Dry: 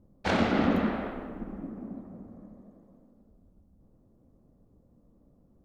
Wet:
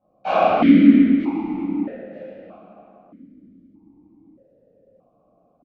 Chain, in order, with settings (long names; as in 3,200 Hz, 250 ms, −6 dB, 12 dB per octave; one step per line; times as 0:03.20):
on a send: repeating echo 931 ms, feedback 21%, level −16.5 dB
on the sum: rectangular room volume 620 cubic metres, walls mixed, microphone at 7.6 metres
formant filter that steps through the vowels 1.6 Hz
level +5.5 dB